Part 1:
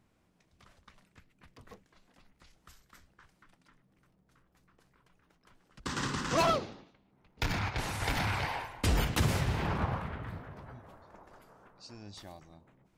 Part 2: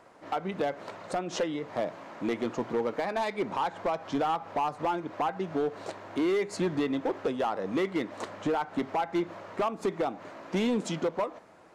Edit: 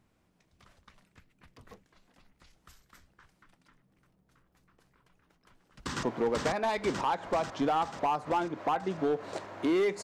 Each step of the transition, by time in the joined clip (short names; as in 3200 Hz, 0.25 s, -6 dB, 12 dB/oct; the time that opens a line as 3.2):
part 1
5.23–6.03 echo throw 0.49 s, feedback 65%, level 0 dB
6.03 switch to part 2 from 2.56 s